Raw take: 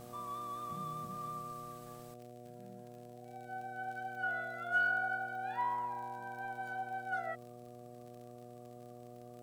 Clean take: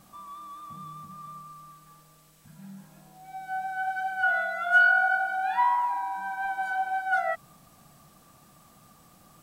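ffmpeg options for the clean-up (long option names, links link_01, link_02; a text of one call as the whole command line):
ffmpeg -i in.wav -af "adeclick=threshold=4,bandreject=frequency=121.1:width_type=h:width=4,bandreject=frequency=242.2:width_type=h:width=4,bandreject=frequency=363.3:width_type=h:width=4,bandreject=frequency=484.4:width_type=h:width=4,bandreject=frequency=605.5:width_type=h:width=4,bandreject=frequency=726.6:width_type=h:width=4,asetnsamples=nb_out_samples=441:pad=0,asendcmd='2.14 volume volume 12dB',volume=0dB" out.wav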